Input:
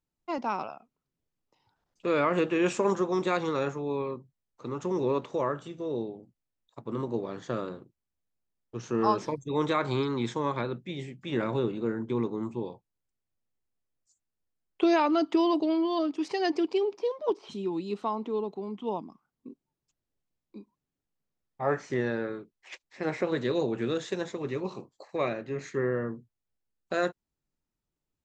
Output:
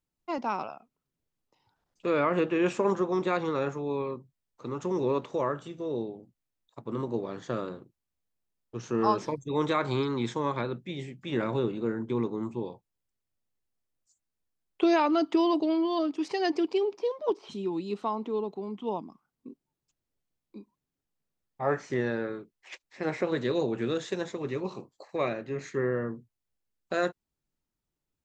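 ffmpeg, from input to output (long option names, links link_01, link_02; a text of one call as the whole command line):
ffmpeg -i in.wav -filter_complex "[0:a]asettb=1/sr,asplit=3[link_01][link_02][link_03];[link_01]atrim=end=2.104[link_04];[link_02]atrim=start=2.1:end=3.72,asetpts=PTS-STARTPTS,afade=type=in:duration=0.004:curve=qsin,afade=type=out:start_time=1.616:duration=0.004:curve=qsin,lowpass=frequency=3400:poles=1[link_05];[link_03]atrim=start=3.716[link_06];[link_04][link_05]acrossfade=duration=0.004:curve1=hsin:curve2=qsin[link_07];[link_07][link_06]acrossfade=duration=0.004:curve1=qsin:curve2=hsin" out.wav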